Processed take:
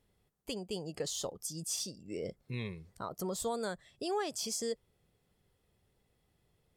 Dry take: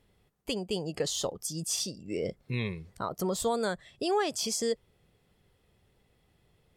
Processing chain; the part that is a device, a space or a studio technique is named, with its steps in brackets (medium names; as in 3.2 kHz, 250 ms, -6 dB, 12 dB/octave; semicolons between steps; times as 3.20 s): exciter from parts (in parallel at -5 dB: high-pass 3.3 kHz 6 dB/octave + saturation -29.5 dBFS, distortion -15 dB + high-pass 2.7 kHz 12 dB/octave); on the sum: trim -6.5 dB